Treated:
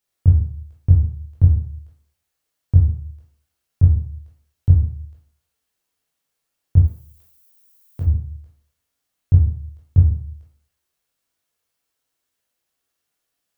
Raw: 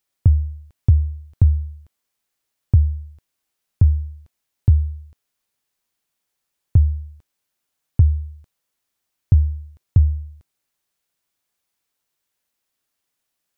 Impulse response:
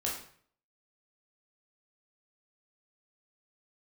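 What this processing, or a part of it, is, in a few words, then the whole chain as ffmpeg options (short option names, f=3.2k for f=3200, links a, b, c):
bathroom: -filter_complex "[1:a]atrim=start_sample=2205[a];[0:a][a]afir=irnorm=-1:irlink=0,asplit=3[b][c][d];[b]afade=t=out:st=6.86:d=0.02[e];[c]aemphasis=mode=production:type=riaa,afade=t=in:st=6.86:d=0.02,afade=t=out:st=8.05:d=0.02[f];[d]afade=t=in:st=8.05:d=0.02[g];[e][f][g]amix=inputs=3:normalize=0,volume=-3.5dB"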